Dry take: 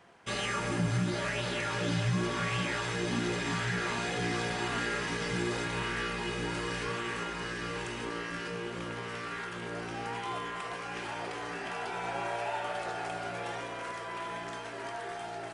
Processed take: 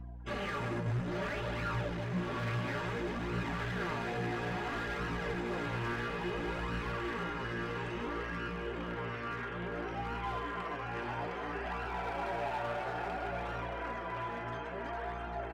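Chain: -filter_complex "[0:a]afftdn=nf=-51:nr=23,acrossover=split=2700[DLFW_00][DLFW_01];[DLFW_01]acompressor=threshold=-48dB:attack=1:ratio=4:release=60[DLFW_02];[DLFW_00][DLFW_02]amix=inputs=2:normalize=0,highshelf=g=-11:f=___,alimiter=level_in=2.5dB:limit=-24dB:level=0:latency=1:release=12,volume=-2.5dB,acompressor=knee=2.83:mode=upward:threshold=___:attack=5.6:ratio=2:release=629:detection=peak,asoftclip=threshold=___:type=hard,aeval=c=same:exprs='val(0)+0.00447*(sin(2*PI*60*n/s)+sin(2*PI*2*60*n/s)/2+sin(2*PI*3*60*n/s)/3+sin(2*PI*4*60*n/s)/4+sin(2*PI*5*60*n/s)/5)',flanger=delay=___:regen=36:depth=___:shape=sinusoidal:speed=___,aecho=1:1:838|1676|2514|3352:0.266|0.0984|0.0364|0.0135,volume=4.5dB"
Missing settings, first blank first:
3200, -48dB, -33.5dB, 0.7, 7.8, 0.59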